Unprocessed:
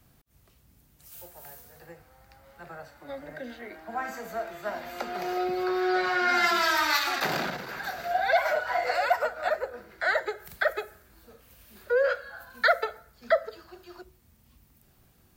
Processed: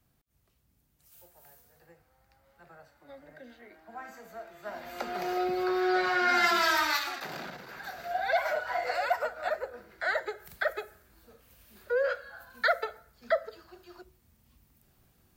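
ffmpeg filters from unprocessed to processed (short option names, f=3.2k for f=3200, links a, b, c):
-af "volume=7dB,afade=t=in:st=4.54:d=0.55:silence=0.334965,afade=t=out:st=6.74:d=0.5:silence=0.281838,afade=t=in:st=7.24:d=1.14:silence=0.398107"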